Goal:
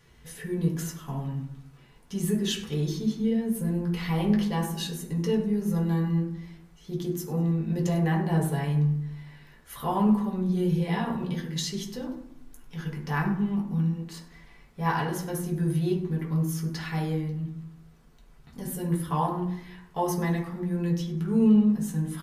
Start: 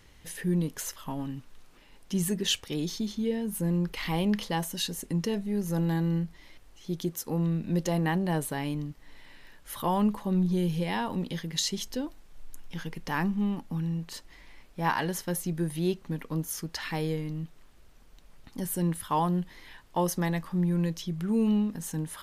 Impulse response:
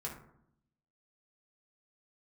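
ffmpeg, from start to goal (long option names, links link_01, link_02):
-filter_complex "[0:a]aecho=1:1:99|198|297:0.112|0.046|0.0189[link_01];[1:a]atrim=start_sample=2205[link_02];[link_01][link_02]afir=irnorm=-1:irlink=0"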